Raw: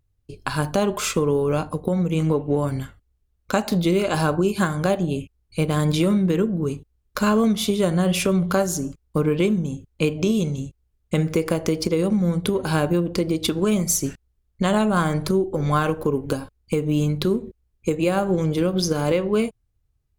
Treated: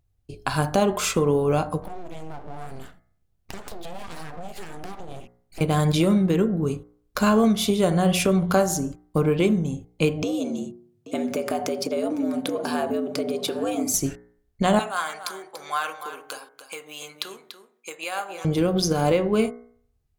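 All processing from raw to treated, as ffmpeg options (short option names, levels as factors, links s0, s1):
-filter_complex "[0:a]asettb=1/sr,asplit=3[s0][s1][s2];[s0]atrim=end=1.824[s3];[s1]atrim=start=1.82:end=5.61,asetpts=PTS-STARTPTS,afade=t=in:d=0.004:c=qsin,afade=t=out:st=3.786:d=0.004:c=qsin,acompressor=threshold=0.0251:ratio=6:attack=3.2:release=140:knee=1:detection=peak,aeval=exprs='abs(val(0))':c=same[s4];[s2]atrim=start=5.606[s5];[s3][s4]acrossfade=d=0.004:c1=hsin:c2=qsin[s6];[s6][s5]acrossfade=d=0.004:c1=qsin:c2=hsin,asettb=1/sr,asplit=3[s7][s8][s9];[s7]atrim=end=10.234[s10];[s8]atrim=start=10.23:end=13.94,asetpts=PTS-STARTPTS,afade=t=in:d=0.004:c=qsin,afade=t=out:st=3.706:d=0.004:c=qsin,acompressor=threshold=0.0631:ratio=2.5:attack=3.2:release=140:knee=1:detection=peak,afreqshift=88,aecho=1:1:830:0.168,atrim=end_sample=163611[s11];[s9]atrim=start=13.936[s12];[s10][s11]acrossfade=d=0.004:c1=hsin:c2=qsin[s13];[s13][s12]acrossfade=d=0.004:c1=qsin:c2=hsin,asettb=1/sr,asplit=3[s14][s15][s16];[s14]atrim=end=14.794[s17];[s15]atrim=start=14.79:end=18.45,asetpts=PTS-STARTPTS,afade=t=in:d=0.004:c=qsin,afade=t=out:st=3.656:d=0.004:c=qsin,highpass=1200,aecho=1:1:289:0.282,atrim=end_sample=161406[s18];[s16]atrim=start=18.446[s19];[s17][s18]acrossfade=d=0.004:c1=hsin:c2=qsin[s20];[s20][s19]acrossfade=d=0.004:c1=qsin:c2=hsin,equalizer=f=730:w=5.1:g=7.5,bandreject=f=59.81:t=h:w=4,bandreject=f=119.62:t=h:w=4,bandreject=f=179.43:t=h:w=4,bandreject=f=239.24:t=h:w=4,bandreject=f=299.05:t=h:w=4,bandreject=f=358.86:t=h:w=4,bandreject=f=418.67:t=h:w=4,bandreject=f=478.48:t=h:w=4,bandreject=f=538.29:t=h:w=4,bandreject=f=598.1:t=h:w=4,bandreject=f=657.91:t=h:w=4,bandreject=f=717.72:t=h:w=4,bandreject=f=777.53:t=h:w=4,bandreject=f=837.34:t=h:w=4,bandreject=f=897.15:t=h:w=4,bandreject=f=956.96:t=h:w=4,bandreject=f=1016.77:t=h:w=4,bandreject=f=1076.58:t=h:w=4,bandreject=f=1136.39:t=h:w=4,bandreject=f=1196.2:t=h:w=4,bandreject=f=1256.01:t=h:w=4,bandreject=f=1315.82:t=h:w=4,bandreject=f=1375.63:t=h:w=4,bandreject=f=1435.44:t=h:w=4,bandreject=f=1495.25:t=h:w=4,bandreject=f=1555.06:t=h:w=4,bandreject=f=1614.87:t=h:w=4,bandreject=f=1674.68:t=h:w=4,bandreject=f=1734.49:t=h:w=4,bandreject=f=1794.3:t=h:w=4,bandreject=f=1854.11:t=h:w=4,bandreject=f=1913.92:t=h:w=4,bandreject=f=1973.73:t=h:w=4,bandreject=f=2033.54:t=h:w=4,bandreject=f=2093.35:t=h:w=4,bandreject=f=2153.16:t=h:w=4"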